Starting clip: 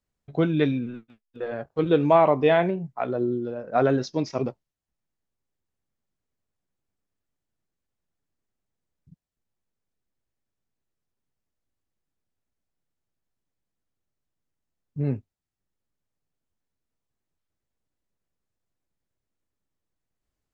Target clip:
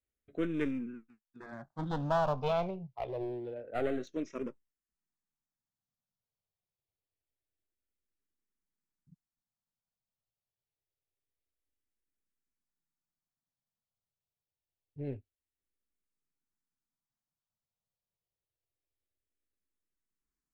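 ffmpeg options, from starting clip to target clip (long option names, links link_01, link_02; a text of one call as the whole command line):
ffmpeg -i in.wav -filter_complex "[0:a]aeval=exprs='clip(val(0),-1,0.0447)':channel_layout=same,asplit=2[link_01][link_02];[link_02]afreqshift=-0.26[link_03];[link_01][link_03]amix=inputs=2:normalize=1,volume=-7.5dB" out.wav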